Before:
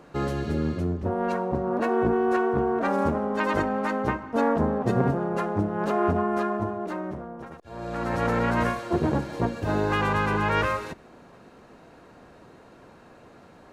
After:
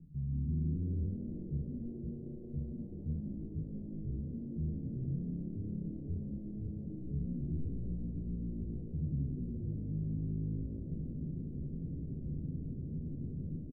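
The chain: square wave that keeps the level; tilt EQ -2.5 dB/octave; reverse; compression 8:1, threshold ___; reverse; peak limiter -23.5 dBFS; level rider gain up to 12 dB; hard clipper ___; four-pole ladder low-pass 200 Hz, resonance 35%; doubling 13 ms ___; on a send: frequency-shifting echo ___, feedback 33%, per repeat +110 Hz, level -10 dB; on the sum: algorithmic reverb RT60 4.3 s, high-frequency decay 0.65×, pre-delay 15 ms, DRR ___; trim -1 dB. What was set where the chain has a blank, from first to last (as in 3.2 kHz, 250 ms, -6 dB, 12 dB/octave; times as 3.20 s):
-27 dBFS, -29 dBFS, -4 dB, 173 ms, 17.5 dB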